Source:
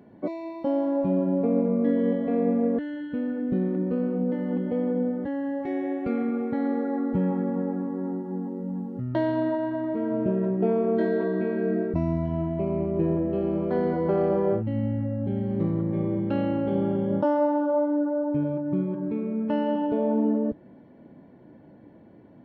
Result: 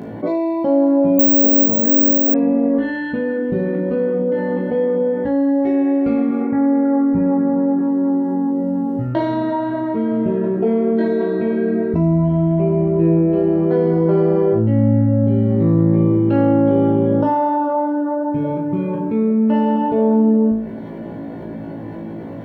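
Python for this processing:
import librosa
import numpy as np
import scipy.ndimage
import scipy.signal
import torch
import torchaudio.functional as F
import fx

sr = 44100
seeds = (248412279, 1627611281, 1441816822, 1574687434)

y = fx.cheby1_lowpass(x, sr, hz=2400.0, order=5, at=(6.41, 7.79))
y = fx.room_flutter(y, sr, wall_m=3.1, rt60_s=0.37)
y = fx.resample_bad(y, sr, factor=2, down='none', up='zero_stuff', at=(1.19, 2.34))
y = fx.env_flatten(y, sr, amount_pct=50)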